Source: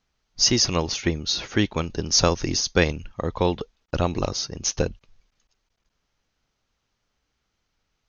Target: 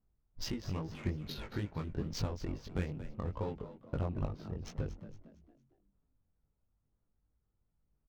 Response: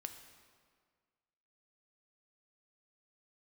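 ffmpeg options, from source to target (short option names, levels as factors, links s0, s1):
-filter_complex "[0:a]bass=f=250:g=7,treble=f=4000:g=-13,acompressor=threshold=0.0562:ratio=4,aphaser=in_gain=1:out_gain=1:delay=2.3:decay=0.26:speed=1:type=sinusoidal,adynamicsmooth=sensitivity=5.5:basefreq=970,flanger=delay=18.5:depth=3.3:speed=2.3,asplit=5[s0][s1][s2][s3][s4];[s1]adelay=229,afreqshift=63,volume=0.211[s5];[s2]adelay=458,afreqshift=126,volume=0.0804[s6];[s3]adelay=687,afreqshift=189,volume=0.0305[s7];[s4]adelay=916,afreqshift=252,volume=0.0116[s8];[s0][s5][s6][s7][s8]amix=inputs=5:normalize=0,volume=0.473"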